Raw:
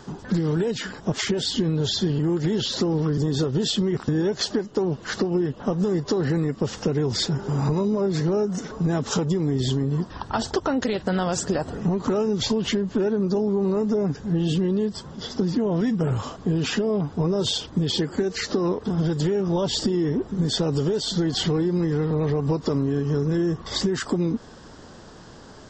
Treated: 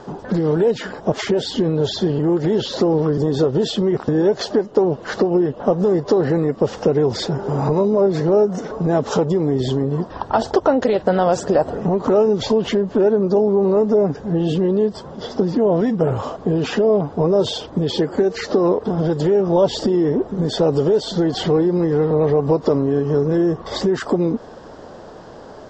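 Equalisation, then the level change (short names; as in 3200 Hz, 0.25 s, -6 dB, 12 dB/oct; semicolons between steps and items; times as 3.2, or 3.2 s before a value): air absorption 56 m; bell 600 Hz +12.5 dB 1.7 oct; 0.0 dB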